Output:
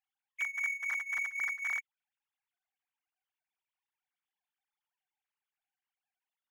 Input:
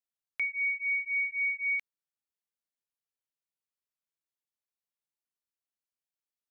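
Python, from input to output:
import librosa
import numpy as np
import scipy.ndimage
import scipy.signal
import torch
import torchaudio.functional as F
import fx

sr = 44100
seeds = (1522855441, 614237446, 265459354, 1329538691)

y = fx.sine_speech(x, sr)
y = fx.power_curve(y, sr, exponent=0.7)
y = y * 10.0 ** (-7.0 / 20.0)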